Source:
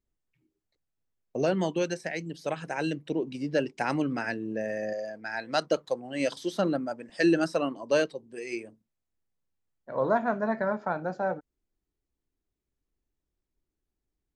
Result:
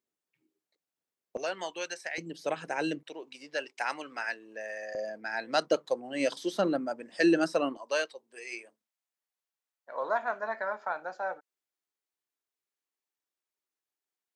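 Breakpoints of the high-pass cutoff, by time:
290 Hz
from 1.37 s 860 Hz
from 2.18 s 260 Hz
from 3.03 s 870 Hz
from 4.95 s 230 Hz
from 7.77 s 790 Hz

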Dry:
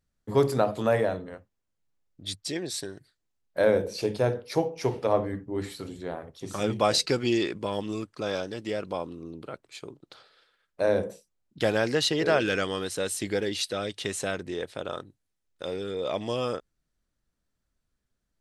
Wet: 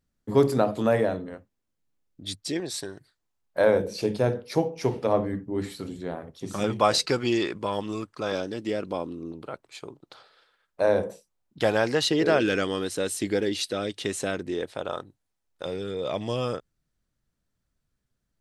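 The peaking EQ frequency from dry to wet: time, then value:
peaking EQ +5.5 dB 1.1 oct
260 Hz
from 2.60 s 950 Hz
from 3.80 s 210 Hz
from 6.64 s 1.1 kHz
from 8.32 s 280 Hz
from 9.32 s 890 Hz
from 12.04 s 290 Hz
from 14.68 s 840 Hz
from 15.66 s 130 Hz

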